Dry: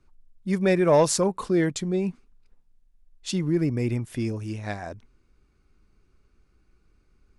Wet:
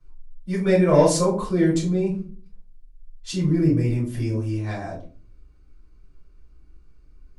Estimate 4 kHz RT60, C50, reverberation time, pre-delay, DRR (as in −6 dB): 0.25 s, 7.5 dB, 0.40 s, 3 ms, −8.0 dB